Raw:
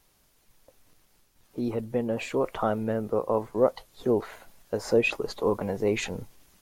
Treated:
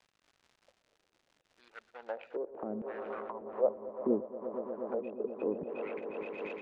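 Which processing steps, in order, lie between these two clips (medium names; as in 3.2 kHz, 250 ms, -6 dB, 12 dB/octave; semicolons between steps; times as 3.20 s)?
local Wiener filter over 41 samples; de-hum 57.2 Hz, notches 2; LFO high-pass saw down 0.71 Hz 200–2700 Hz; bass shelf 480 Hz -11 dB; echo with a slow build-up 119 ms, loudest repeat 5, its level -13 dB; crackle 190 per s -47 dBFS; low-pass that closes with the level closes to 460 Hz, closed at -27.5 dBFS; distance through air 79 m; random flutter of the level, depth 65%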